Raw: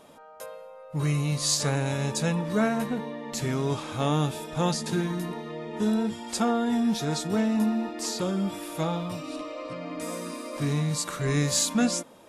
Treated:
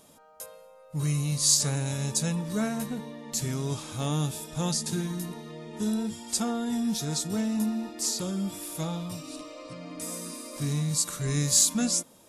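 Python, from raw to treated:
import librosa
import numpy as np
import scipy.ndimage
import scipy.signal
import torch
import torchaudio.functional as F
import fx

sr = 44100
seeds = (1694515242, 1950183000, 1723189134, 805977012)

y = fx.bass_treble(x, sr, bass_db=7, treble_db=14)
y = F.gain(torch.from_numpy(y), -7.5).numpy()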